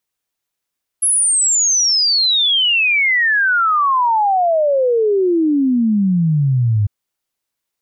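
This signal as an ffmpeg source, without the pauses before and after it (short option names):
-f lavfi -i "aevalsrc='0.266*clip(min(t,5.85-t)/0.01,0,1)*sin(2*PI*11000*5.85/log(100/11000)*(exp(log(100/11000)*t/5.85)-1))':d=5.85:s=44100"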